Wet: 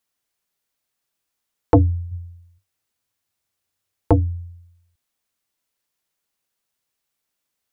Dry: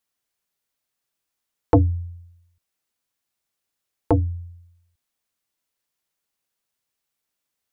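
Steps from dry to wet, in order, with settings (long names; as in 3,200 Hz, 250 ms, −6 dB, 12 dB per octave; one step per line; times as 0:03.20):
0:02.11–0:04.13: parametric band 96 Hz +12.5 dB 0.42 octaves
level +2 dB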